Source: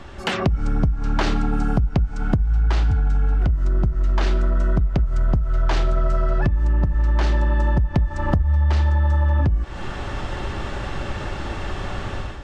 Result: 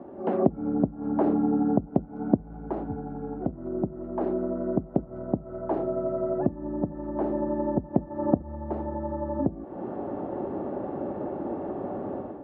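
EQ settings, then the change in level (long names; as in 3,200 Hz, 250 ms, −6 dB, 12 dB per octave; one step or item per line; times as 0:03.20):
Chebyshev band-pass filter 260–710 Hz, order 2
low-shelf EQ 390 Hz +7.5 dB
0.0 dB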